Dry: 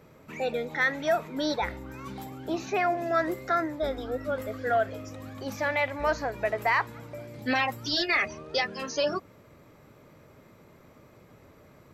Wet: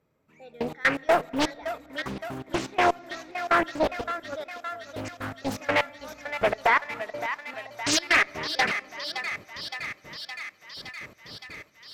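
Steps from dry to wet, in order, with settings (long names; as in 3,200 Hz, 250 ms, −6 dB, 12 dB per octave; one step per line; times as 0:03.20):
0:02.81–0:03.46: linear delta modulator 32 kbit/s, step −34.5 dBFS
0:04.01–0:04.79: noise gate −25 dBFS, range −16 dB
gate pattern ".....x.x.x.x" 124 BPM −24 dB
asymmetric clip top −23 dBFS
0:06.67–0:07.54: three-way crossover with the lows and the highs turned down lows −13 dB, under 260 Hz, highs −14 dB, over 3,300 Hz
feedback echo with a high-pass in the loop 566 ms, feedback 78%, high-pass 720 Hz, level −8.5 dB
on a send at −23 dB: convolution reverb RT60 3.4 s, pre-delay 4 ms
on the sum: highs frequency-modulated by the lows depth 0.67 ms
level +6 dB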